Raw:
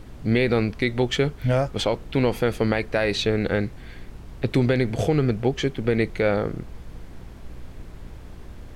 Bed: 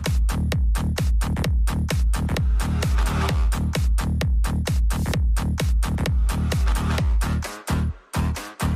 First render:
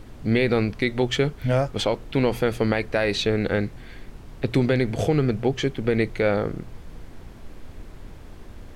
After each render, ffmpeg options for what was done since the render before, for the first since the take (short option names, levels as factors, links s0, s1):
-af "bandreject=f=60:t=h:w=4,bandreject=f=120:t=h:w=4,bandreject=f=180:t=h:w=4"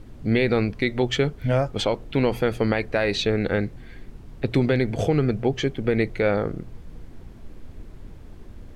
-af "afftdn=nr=6:nf=-43"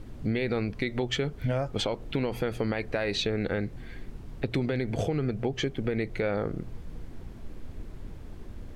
-af "alimiter=limit=0.211:level=0:latency=1:release=137,acompressor=threshold=0.0447:ratio=2.5"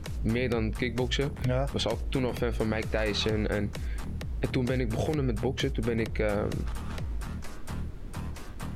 -filter_complex "[1:a]volume=0.188[s0];[0:a][s0]amix=inputs=2:normalize=0"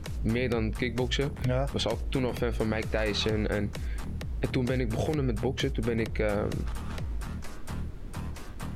-af anull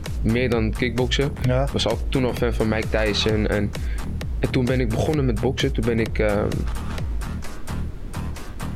-af "volume=2.37"